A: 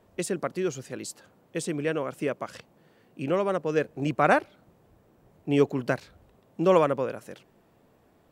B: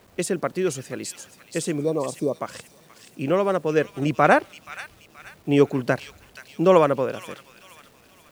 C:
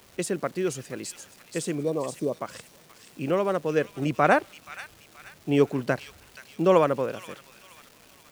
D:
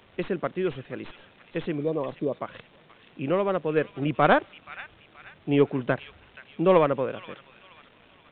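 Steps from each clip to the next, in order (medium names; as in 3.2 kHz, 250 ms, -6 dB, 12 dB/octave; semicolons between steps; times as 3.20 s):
spectral replace 1.80–2.33 s, 1.2–3.5 kHz both; feedback echo behind a high-pass 477 ms, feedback 41%, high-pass 2.6 kHz, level -6 dB; word length cut 10-bit, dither none; trim +4.5 dB
crackle 570 per s -38 dBFS; trim -3.5 dB
tracing distortion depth 0.09 ms; resampled via 8 kHz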